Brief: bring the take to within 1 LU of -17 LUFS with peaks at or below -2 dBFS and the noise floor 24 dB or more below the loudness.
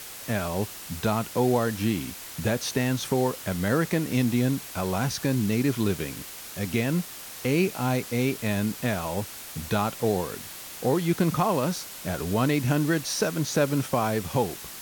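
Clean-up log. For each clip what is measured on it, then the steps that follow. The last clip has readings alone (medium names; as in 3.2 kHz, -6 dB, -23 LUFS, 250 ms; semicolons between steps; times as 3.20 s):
noise floor -41 dBFS; noise floor target -51 dBFS; loudness -27.0 LUFS; peak level -11.0 dBFS; loudness target -17.0 LUFS
-> noise reduction 10 dB, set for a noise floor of -41 dBFS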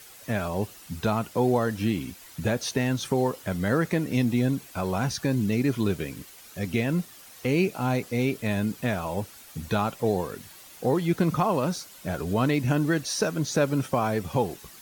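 noise floor -48 dBFS; noise floor target -51 dBFS
-> noise reduction 6 dB, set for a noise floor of -48 dBFS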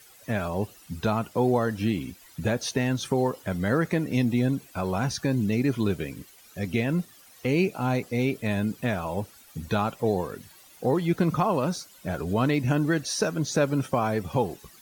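noise floor -53 dBFS; loudness -27.0 LUFS; peak level -11.0 dBFS; loudness target -17.0 LUFS
-> trim +10 dB; peak limiter -2 dBFS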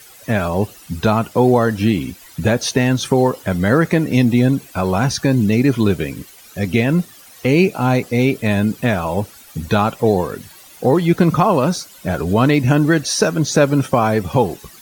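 loudness -17.0 LUFS; peak level -2.0 dBFS; noise floor -43 dBFS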